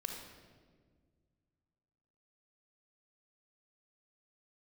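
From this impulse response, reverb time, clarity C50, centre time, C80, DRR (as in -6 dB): 1.7 s, 3.0 dB, 51 ms, 5.0 dB, 2.0 dB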